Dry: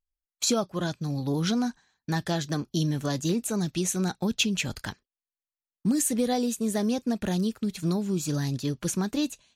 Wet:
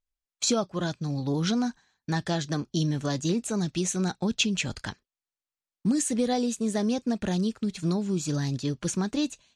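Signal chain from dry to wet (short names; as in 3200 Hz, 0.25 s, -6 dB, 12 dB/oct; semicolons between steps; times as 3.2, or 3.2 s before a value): LPF 8700 Hz 24 dB/oct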